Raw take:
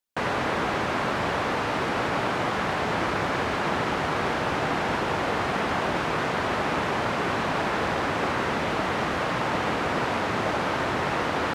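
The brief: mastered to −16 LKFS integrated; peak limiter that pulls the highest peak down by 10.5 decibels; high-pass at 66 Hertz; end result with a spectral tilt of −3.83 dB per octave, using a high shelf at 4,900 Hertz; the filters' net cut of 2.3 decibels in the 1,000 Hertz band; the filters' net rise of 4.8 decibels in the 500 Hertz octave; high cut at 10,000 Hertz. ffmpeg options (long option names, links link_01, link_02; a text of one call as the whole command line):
ffmpeg -i in.wav -af "highpass=66,lowpass=10000,equalizer=frequency=500:width_type=o:gain=7.5,equalizer=frequency=1000:width_type=o:gain=-5.5,highshelf=frequency=4900:gain=-4.5,volume=14.5dB,alimiter=limit=-7.5dB:level=0:latency=1" out.wav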